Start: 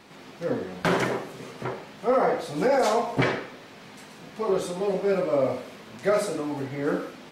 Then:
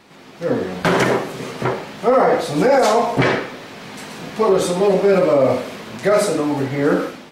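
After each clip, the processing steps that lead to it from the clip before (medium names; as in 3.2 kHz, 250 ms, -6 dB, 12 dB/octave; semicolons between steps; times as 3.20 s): level rider gain up to 11.5 dB; peak limiter -8 dBFS, peak gain reduction 6 dB; trim +2 dB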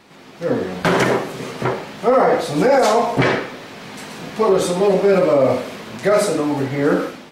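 no audible change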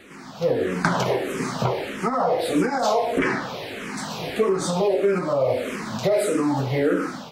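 compression, threshold -21 dBFS, peak gain reduction 10.5 dB; barber-pole phaser -1.6 Hz; trim +5 dB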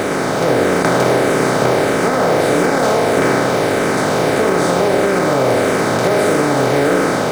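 spectral levelling over time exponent 0.2; in parallel at -4 dB: short-mantissa float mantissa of 2-bit; on the sum: trim -6 dB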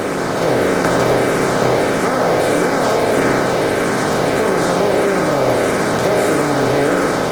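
reverberation RT60 1.0 s, pre-delay 13 ms, DRR 15.5 dB; trim -1 dB; Opus 16 kbps 48 kHz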